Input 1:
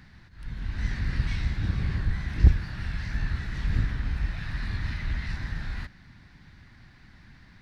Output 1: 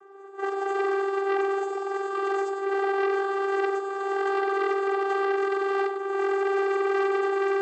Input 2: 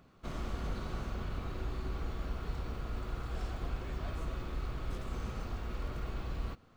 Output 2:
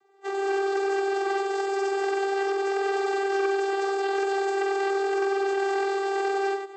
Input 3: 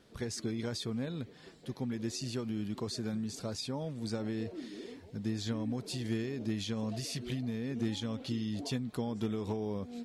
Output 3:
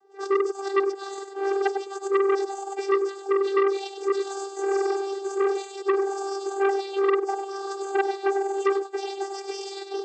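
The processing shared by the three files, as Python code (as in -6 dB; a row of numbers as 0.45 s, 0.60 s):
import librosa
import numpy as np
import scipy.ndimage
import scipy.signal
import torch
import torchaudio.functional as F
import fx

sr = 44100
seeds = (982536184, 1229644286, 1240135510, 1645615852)

p1 = fx.octave_mirror(x, sr, pivot_hz=1500.0)
p2 = fx.recorder_agc(p1, sr, target_db=-24.0, rise_db_per_s=40.0, max_gain_db=30)
p3 = fx.peak_eq(p2, sr, hz=740.0, db=11.5, octaves=2.2)
p4 = fx.level_steps(p3, sr, step_db=18)
p5 = p3 + (p4 * 10.0 ** (0.5 / 20.0))
p6 = fx.cheby_harmonics(p5, sr, harmonics=(7,), levels_db=(-22,), full_scale_db=-10.0)
p7 = fx.vocoder(p6, sr, bands=16, carrier='saw', carrier_hz=393.0)
p8 = p7 + fx.echo_single(p7, sr, ms=99, db=-7.5, dry=0)
p9 = fx.transformer_sat(p8, sr, knee_hz=1100.0)
y = p9 * 10.0 ** (-26 / 20.0) / np.sqrt(np.mean(np.square(p9)))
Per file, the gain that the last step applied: +2.0 dB, +3.5 dB, +4.5 dB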